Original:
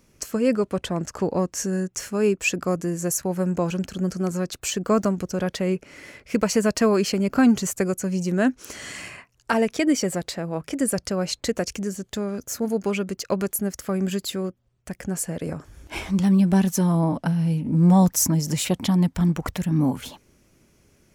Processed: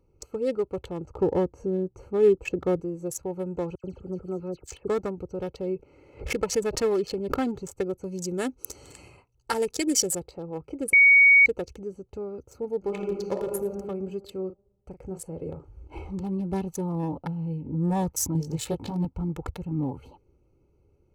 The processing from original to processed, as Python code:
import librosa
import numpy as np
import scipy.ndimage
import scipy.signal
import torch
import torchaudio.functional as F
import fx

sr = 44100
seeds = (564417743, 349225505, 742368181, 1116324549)

y = fx.tilt_shelf(x, sr, db=6.5, hz=1500.0, at=(1.08, 2.8))
y = fx.dispersion(y, sr, late='lows', ms=88.0, hz=2800.0, at=(3.75, 4.88))
y = fx.pre_swell(y, sr, db_per_s=110.0, at=(5.71, 7.34), fade=0.02)
y = fx.bass_treble(y, sr, bass_db=1, treble_db=14, at=(8.03, 10.22))
y = fx.reverb_throw(y, sr, start_s=12.78, length_s=0.92, rt60_s=1.4, drr_db=-0.5)
y = fx.doubler(y, sr, ms=37.0, db=-9.5, at=(14.31, 16.22))
y = fx.doubler(y, sr, ms=18.0, db=-2.0, at=(18.33, 19.05))
y = fx.edit(y, sr, fx.bleep(start_s=10.93, length_s=0.53, hz=2240.0, db=-9.0), tone=tone)
y = fx.wiener(y, sr, points=25)
y = fx.peak_eq(y, sr, hz=69.0, db=3.5, octaves=0.77)
y = y + 0.63 * np.pad(y, (int(2.3 * sr / 1000.0), 0))[:len(y)]
y = y * 10.0 ** (-6.0 / 20.0)